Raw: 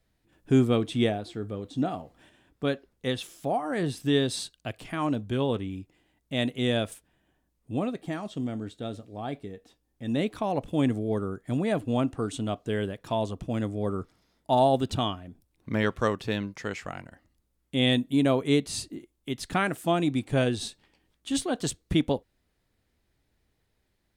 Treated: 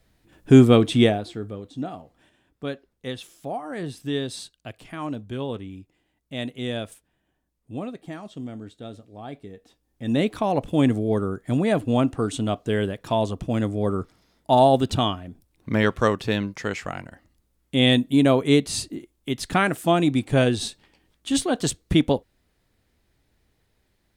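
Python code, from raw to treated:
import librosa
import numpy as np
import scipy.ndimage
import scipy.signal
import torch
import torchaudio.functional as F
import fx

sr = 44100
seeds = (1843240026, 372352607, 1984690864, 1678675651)

y = fx.gain(x, sr, db=fx.line((0.93, 9.0), (1.76, -3.0), (9.29, -3.0), (10.13, 5.5)))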